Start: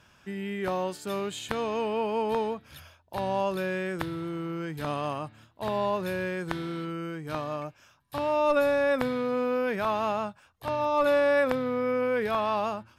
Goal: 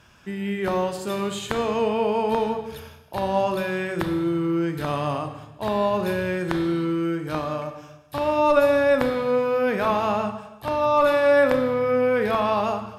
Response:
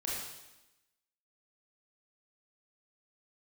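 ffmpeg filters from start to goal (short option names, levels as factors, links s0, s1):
-filter_complex "[0:a]asplit=2[s0][s1];[1:a]atrim=start_sample=2205,lowshelf=f=470:g=6[s2];[s1][s2]afir=irnorm=-1:irlink=0,volume=0.422[s3];[s0][s3]amix=inputs=2:normalize=0,volume=1.26"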